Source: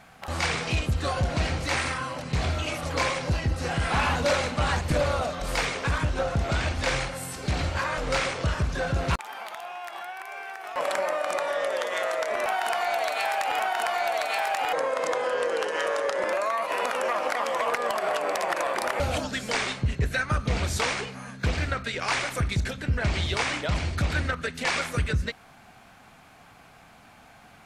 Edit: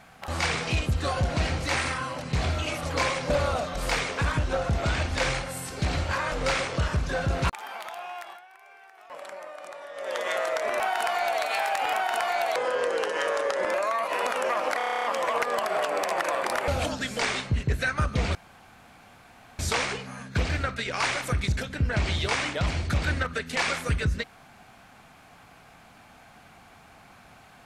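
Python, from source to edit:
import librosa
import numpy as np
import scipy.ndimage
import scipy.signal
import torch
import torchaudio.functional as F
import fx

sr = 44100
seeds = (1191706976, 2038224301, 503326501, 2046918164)

y = fx.edit(x, sr, fx.cut(start_s=3.3, length_s=1.66),
    fx.fade_down_up(start_s=9.82, length_s=2.05, db=-13.5, fade_s=0.26),
    fx.cut(start_s=14.22, length_s=0.93),
    fx.stutter(start_s=17.36, slice_s=0.03, count=10),
    fx.insert_room_tone(at_s=20.67, length_s=1.24), tone=tone)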